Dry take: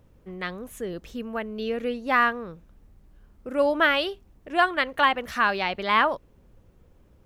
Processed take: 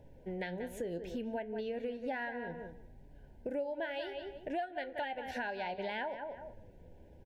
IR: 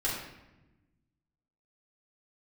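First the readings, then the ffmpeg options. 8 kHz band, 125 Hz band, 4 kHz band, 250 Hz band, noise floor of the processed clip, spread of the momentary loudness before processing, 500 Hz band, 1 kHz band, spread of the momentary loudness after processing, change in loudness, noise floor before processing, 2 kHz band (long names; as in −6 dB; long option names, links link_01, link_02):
can't be measured, −6.0 dB, −18.0 dB, −10.0 dB, −57 dBFS, 15 LU, −10.0 dB, −17.0 dB, 19 LU, −15.0 dB, −58 dBFS, −17.0 dB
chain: -filter_complex "[0:a]asuperstop=centerf=1200:order=20:qfactor=2.6,equalizer=frequency=630:width=1.2:gain=6,asplit=2[link_01][link_02];[link_02]adelay=182,lowpass=frequency=2700:poles=1,volume=-11dB,asplit=2[link_03][link_04];[link_04]adelay=182,lowpass=frequency=2700:poles=1,volume=0.16[link_05];[link_01][link_03][link_05]amix=inputs=3:normalize=0,asplit=2[link_06][link_07];[1:a]atrim=start_sample=2205[link_08];[link_07][link_08]afir=irnorm=-1:irlink=0,volume=-28dB[link_09];[link_06][link_09]amix=inputs=2:normalize=0,flanger=delay=7:depth=5.3:regen=70:speed=0.64:shape=sinusoidal,acompressor=threshold=-39dB:ratio=8,highshelf=frequency=4400:gain=-8,volume=3.5dB"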